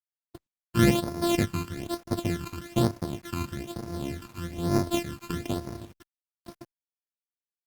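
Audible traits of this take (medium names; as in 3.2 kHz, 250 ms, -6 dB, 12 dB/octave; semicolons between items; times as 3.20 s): a buzz of ramps at a fixed pitch in blocks of 128 samples; phasing stages 12, 1.1 Hz, lowest notch 580–3000 Hz; a quantiser's noise floor 10-bit, dither none; Opus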